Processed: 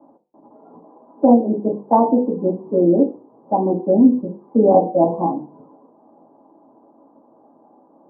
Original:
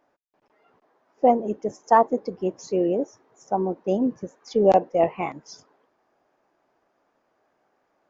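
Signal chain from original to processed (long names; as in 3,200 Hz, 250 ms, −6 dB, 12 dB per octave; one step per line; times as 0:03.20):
Butterworth low-pass 950 Hz 36 dB per octave
mains-hum notches 50/100/150/200/250/300/350/400/450/500 Hz
convolution reverb RT60 0.35 s, pre-delay 3 ms, DRR −7.5 dB
multiband upward and downward compressor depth 40%
level −10.5 dB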